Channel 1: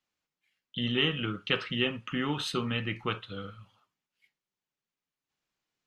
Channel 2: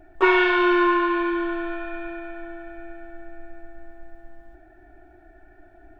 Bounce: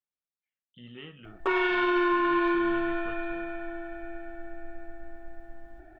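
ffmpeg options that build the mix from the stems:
ffmpeg -i stem1.wav -i stem2.wav -filter_complex "[0:a]lowpass=2600,volume=-16dB[link_01];[1:a]adelay=1250,volume=-0.5dB[link_02];[link_01][link_02]amix=inputs=2:normalize=0,alimiter=limit=-17.5dB:level=0:latency=1" out.wav

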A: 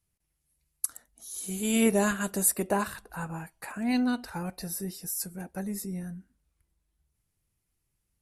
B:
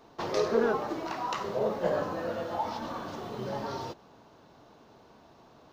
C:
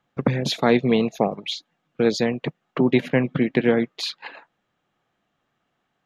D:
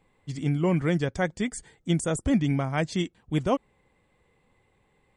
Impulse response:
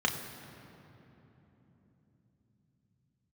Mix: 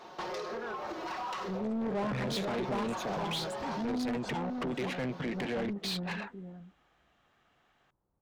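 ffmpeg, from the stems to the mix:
-filter_complex "[0:a]lowpass=frequency=1000:width=0.5412,lowpass=frequency=1000:width=1.3066,volume=0dB,asplit=2[link_01][link_02];[link_02]volume=-12.5dB[link_03];[1:a]aecho=1:1:5.5:0.53,acompressor=threshold=-37dB:ratio=12,volume=-4dB[link_04];[2:a]lowshelf=frequency=120:gain=11.5,alimiter=limit=-12.5dB:level=0:latency=1:release=86,adelay=1850,volume=-7.5dB[link_05];[3:a]adelay=1350,volume=-19.5dB[link_06];[link_03]aecho=0:1:492:1[link_07];[link_01][link_04][link_05][link_06][link_07]amix=inputs=5:normalize=0,asoftclip=type=tanh:threshold=-28.5dB,asplit=2[link_08][link_09];[link_09]highpass=frequency=720:poles=1,volume=19dB,asoftclip=type=tanh:threshold=-28.5dB[link_10];[link_08][link_10]amix=inputs=2:normalize=0,lowpass=frequency=5100:poles=1,volume=-6dB"

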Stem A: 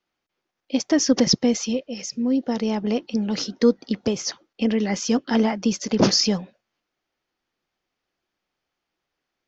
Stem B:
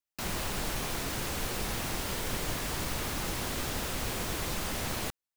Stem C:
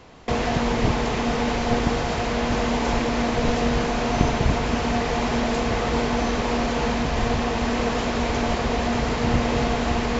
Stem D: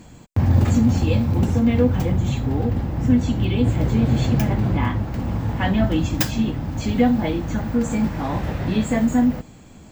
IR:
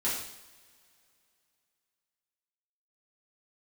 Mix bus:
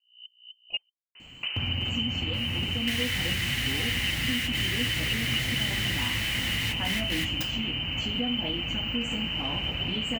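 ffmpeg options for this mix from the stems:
-filter_complex "[0:a]aeval=exprs='val(0)+0.0112*(sin(2*PI*60*n/s)+sin(2*PI*2*60*n/s)/2+sin(2*PI*3*60*n/s)/3+sin(2*PI*4*60*n/s)/4+sin(2*PI*5*60*n/s)/5)':channel_layout=same,highpass=85,aeval=exprs='val(0)*pow(10,-36*if(lt(mod(-3.9*n/s,1),2*abs(-3.9)/1000),1-mod(-3.9*n/s,1)/(2*abs(-3.9)/1000),(mod(-3.9*n/s,1)-2*abs(-3.9)/1000)/(1-2*abs(-3.9)/1000))/20)':channel_layout=same,volume=1.5dB,asplit=3[link_01][link_02][link_03];[link_01]atrim=end=0.89,asetpts=PTS-STARTPTS,afade=type=out:start_time=0.886:duration=0.004:curve=hsin[link_04];[link_02]atrim=start=0.89:end=2.86,asetpts=PTS-STARTPTS,volume=0[link_05];[link_03]atrim=start=2.86,asetpts=PTS-STARTPTS,afade=type=in:duration=0.004:curve=hsin[link_06];[link_04][link_05][link_06]concat=n=3:v=0:a=1,asplit=2[link_07][link_08];[1:a]highpass=frequency=2000:width_type=q:width=6.2,adelay=2150,volume=-2.5dB,asplit=2[link_09][link_10];[link_10]volume=-19dB[link_11];[2:a]lowshelf=frequency=310:gain=9.5,adelay=1150,volume=-9dB[link_12];[3:a]acompressor=threshold=-19dB:ratio=6,adelay=1200,volume=-10.5dB,asplit=2[link_13][link_14];[link_14]volume=-19.5dB[link_15];[link_08]apad=whole_len=331405[link_16];[link_09][link_16]sidechaingate=range=-33dB:threshold=-53dB:ratio=16:detection=peak[link_17];[link_07][link_12]amix=inputs=2:normalize=0,lowpass=frequency=2600:width_type=q:width=0.5098,lowpass=frequency=2600:width_type=q:width=0.6013,lowpass=frequency=2600:width_type=q:width=0.9,lowpass=frequency=2600:width_type=q:width=2.563,afreqshift=-3100,acompressor=threshold=-32dB:ratio=4,volume=0dB[link_18];[4:a]atrim=start_sample=2205[link_19];[link_11][link_15]amix=inputs=2:normalize=0[link_20];[link_20][link_19]afir=irnorm=-1:irlink=0[link_21];[link_17][link_13][link_18][link_21]amix=inputs=4:normalize=0,equalizer=frequency=3700:width_type=o:width=0.56:gain=3"

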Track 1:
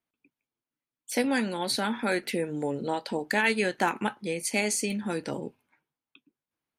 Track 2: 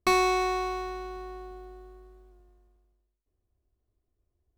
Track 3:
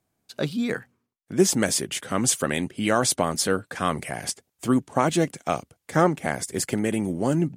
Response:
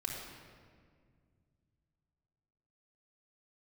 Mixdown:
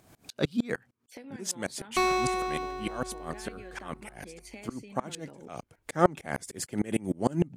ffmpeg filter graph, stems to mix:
-filter_complex "[0:a]equalizer=frequency=9000:width=0.59:gain=-10.5,acompressor=threshold=-30dB:ratio=5,volume=-4.5dB,afade=type=in:start_time=0.84:duration=0.52:silence=0.398107,afade=type=in:start_time=5.37:duration=0.62:silence=0.298538,asplit=2[link_01][link_02];[1:a]adelay=1900,volume=-2.5dB[link_03];[2:a]aeval=exprs='val(0)*pow(10,-30*if(lt(mod(-6.6*n/s,1),2*abs(-6.6)/1000),1-mod(-6.6*n/s,1)/(2*abs(-6.6)/1000),(mod(-6.6*n/s,1)-2*abs(-6.6)/1000)/(1-2*abs(-6.6)/1000))/20)':channel_layout=same,volume=3dB[link_04];[link_02]apad=whole_len=333611[link_05];[link_04][link_05]sidechaincompress=threshold=-54dB:ratio=8:attack=42:release=330[link_06];[link_01][link_03][link_06]amix=inputs=3:normalize=0,highshelf=frequency=9700:gain=-3.5,acompressor=mode=upward:threshold=-38dB:ratio=2.5"

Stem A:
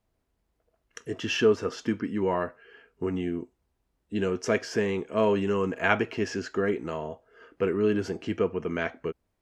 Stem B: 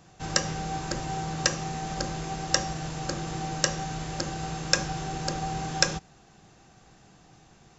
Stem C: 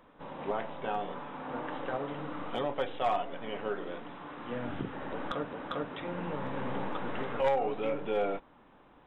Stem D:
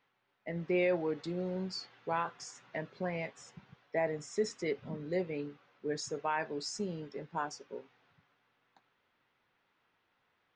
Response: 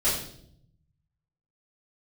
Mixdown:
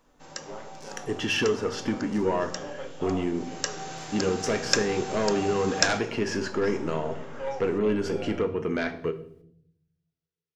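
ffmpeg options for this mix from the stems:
-filter_complex "[0:a]acompressor=threshold=-28dB:ratio=2,aeval=exprs='0.266*sin(PI/2*2.82*val(0)/0.266)':channel_layout=same,volume=-9dB,asplit=2[link_01][link_02];[link_02]volume=-19dB[link_03];[1:a]highpass=frequency=450:poles=1,afade=type=in:start_time=3.33:duration=0.66:silence=0.223872[link_04];[2:a]volume=-11dB,asplit=2[link_05][link_06];[link_06]volume=-12dB[link_07];[3:a]aeval=exprs='(mod(11.9*val(0)+1,2)-1)/11.9':channel_layout=same,bandpass=frequency=5700:width_type=q:width=3.4:csg=0,volume=-10dB,asplit=2[link_08][link_09];[link_09]volume=-13.5dB[link_10];[4:a]atrim=start_sample=2205[link_11];[link_03][link_07][link_10]amix=inputs=3:normalize=0[link_12];[link_12][link_11]afir=irnorm=-1:irlink=0[link_13];[link_01][link_04][link_05][link_08][link_13]amix=inputs=5:normalize=0"

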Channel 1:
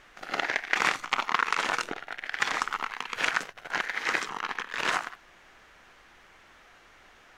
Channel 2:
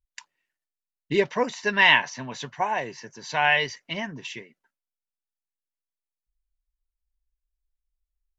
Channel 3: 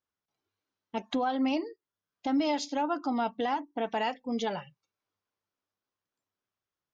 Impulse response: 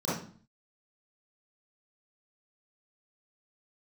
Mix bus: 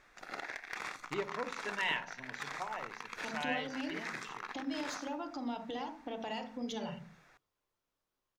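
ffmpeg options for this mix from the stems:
-filter_complex "[0:a]bandreject=frequency=3000:width=5.4,volume=-8dB[link_01];[1:a]aeval=exprs='0.562*(cos(1*acos(clip(val(0)/0.562,-1,1)))-cos(1*PI/2))+0.0126*(cos(5*acos(clip(val(0)/0.562,-1,1)))-cos(5*PI/2))':channel_layout=same,volume=-17.5dB,asplit=2[link_02][link_03];[link_03]volume=-21dB[link_04];[2:a]acrossover=split=140|3000[link_05][link_06][link_07];[link_06]acompressor=threshold=-44dB:ratio=2.5[link_08];[link_05][link_08][link_07]amix=inputs=3:normalize=0,adelay=2300,volume=2dB,asplit=2[link_09][link_10];[link_10]volume=-19.5dB[link_11];[link_01][link_09]amix=inputs=2:normalize=0,asoftclip=type=tanh:threshold=-26dB,acompressor=threshold=-38dB:ratio=6,volume=0dB[link_12];[3:a]atrim=start_sample=2205[link_13];[link_04][link_11]amix=inputs=2:normalize=0[link_14];[link_14][link_13]afir=irnorm=-1:irlink=0[link_15];[link_02][link_12][link_15]amix=inputs=3:normalize=0"

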